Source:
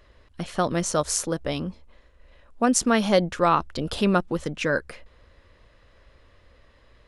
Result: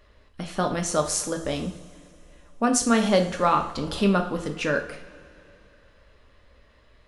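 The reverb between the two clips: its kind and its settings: two-slope reverb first 0.47 s, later 2.9 s, from -19 dB, DRR 3.5 dB; trim -2 dB

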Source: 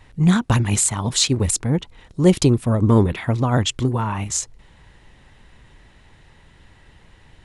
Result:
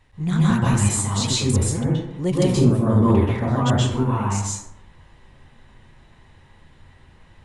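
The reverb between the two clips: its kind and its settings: plate-style reverb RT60 0.88 s, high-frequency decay 0.4×, pre-delay 115 ms, DRR -7.5 dB; trim -9.5 dB

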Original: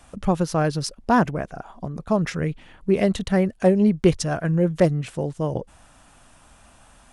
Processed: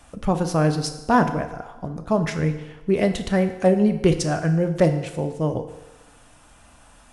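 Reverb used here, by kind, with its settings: FDN reverb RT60 1.1 s, low-frequency decay 0.75×, high-frequency decay 0.85×, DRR 6.5 dB

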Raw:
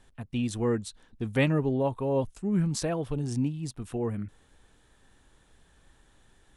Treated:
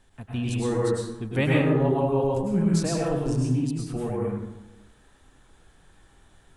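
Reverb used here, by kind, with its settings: plate-style reverb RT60 1 s, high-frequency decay 0.5×, pre-delay 90 ms, DRR -4.5 dB; trim -1 dB

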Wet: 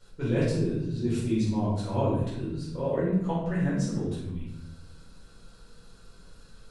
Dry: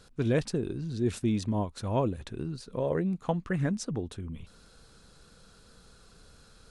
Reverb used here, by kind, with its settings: simulated room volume 270 m³, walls mixed, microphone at 4.6 m; trim -11.5 dB

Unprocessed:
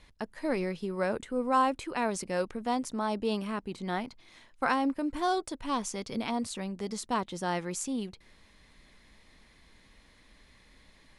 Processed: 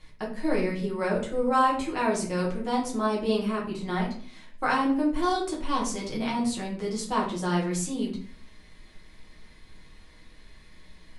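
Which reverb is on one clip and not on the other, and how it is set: simulated room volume 47 m³, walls mixed, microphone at 1 m; trim -1.5 dB

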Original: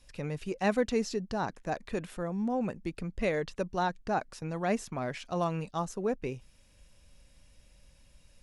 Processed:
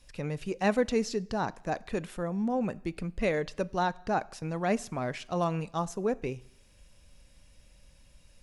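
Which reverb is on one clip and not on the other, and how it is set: plate-style reverb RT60 0.73 s, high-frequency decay 0.95×, DRR 19.5 dB; trim +1.5 dB

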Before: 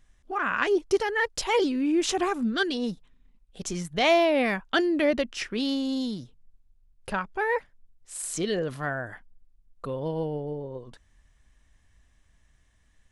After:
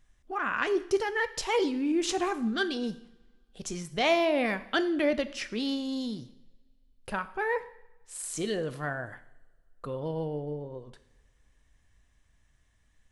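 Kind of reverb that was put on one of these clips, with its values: two-slope reverb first 0.71 s, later 2.5 s, from -25 dB, DRR 11.5 dB; trim -3.5 dB

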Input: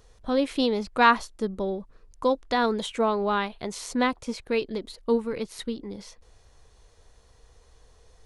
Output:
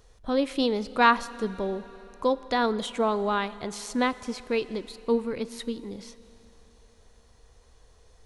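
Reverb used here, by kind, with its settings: Schroeder reverb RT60 3.6 s, combs from 26 ms, DRR 16.5 dB; trim -1 dB

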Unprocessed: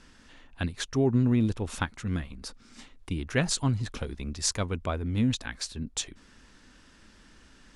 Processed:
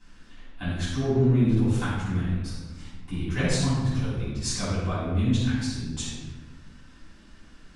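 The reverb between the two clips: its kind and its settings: simulated room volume 700 m³, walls mixed, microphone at 9 m; trim -14 dB

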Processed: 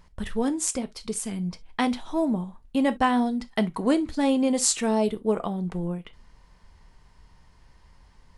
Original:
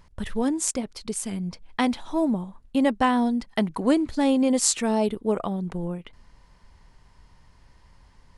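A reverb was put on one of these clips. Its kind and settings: gated-style reverb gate 90 ms falling, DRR 11 dB; trim -1 dB

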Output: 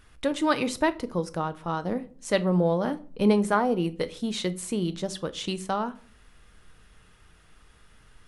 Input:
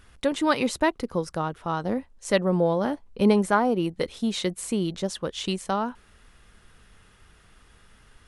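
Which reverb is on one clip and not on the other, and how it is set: simulated room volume 380 m³, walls furnished, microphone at 0.5 m; trim -2 dB

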